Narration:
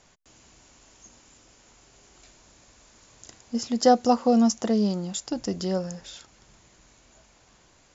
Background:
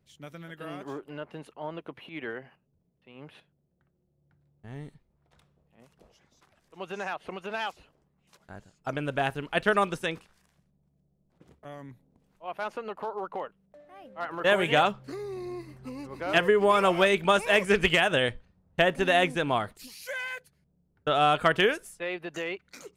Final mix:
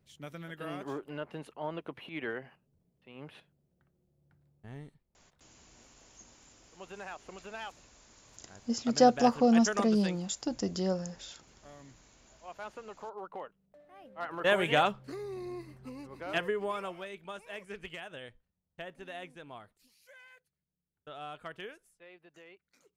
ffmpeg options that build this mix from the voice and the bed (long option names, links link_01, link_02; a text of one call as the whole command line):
ffmpeg -i stem1.wav -i stem2.wav -filter_complex "[0:a]adelay=5150,volume=-4dB[link_01];[1:a]volume=5.5dB,afade=type=out:start_time=4.47:duration=0.49:silence=0.354813,afade=type=in:start_time=12.99:duration=1.38:silence=0.501187,afade=type=out:start_time=15.63:duration=1.38:silence=0.133352[link_02];[link_01][link_02]amix=inputs=2:normalize=0" out.wav